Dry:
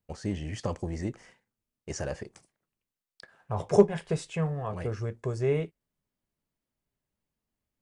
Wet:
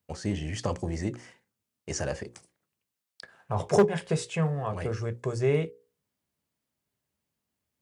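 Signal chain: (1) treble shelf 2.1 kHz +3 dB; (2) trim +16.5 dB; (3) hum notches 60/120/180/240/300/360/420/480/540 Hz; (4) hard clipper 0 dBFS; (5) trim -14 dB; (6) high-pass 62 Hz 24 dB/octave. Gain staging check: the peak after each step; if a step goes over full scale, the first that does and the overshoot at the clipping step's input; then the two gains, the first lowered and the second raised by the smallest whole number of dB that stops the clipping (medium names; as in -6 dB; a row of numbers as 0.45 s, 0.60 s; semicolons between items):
-7.0 dBFS, +9.5 dBFS, +8.0 dBFS, 0.0 dBFS, -14.0 dBFS, -10.5 dBFS; step 2, 8.0 dB; step 2 +8.5 dB, step 5 -6 dB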